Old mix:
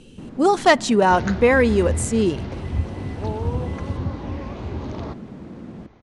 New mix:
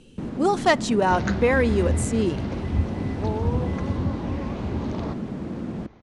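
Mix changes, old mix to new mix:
speech -4.5 dB; first sound +6.0 dB

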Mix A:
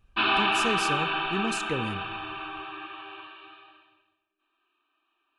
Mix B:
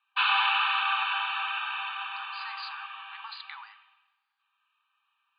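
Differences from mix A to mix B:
speech: entry +1.80 s; master: add brick-wall FIR band-pass 780–4900 Hz

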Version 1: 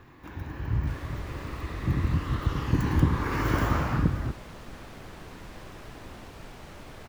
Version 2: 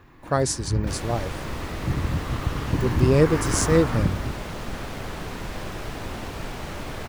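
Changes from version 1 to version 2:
speech: unmuted; second sound +11.5 dB

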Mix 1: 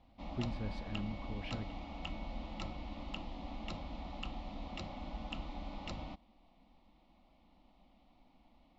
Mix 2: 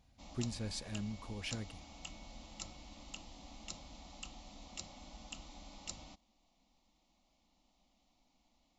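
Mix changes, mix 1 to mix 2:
background -10.5 dB; master: remove distance through air 380 m

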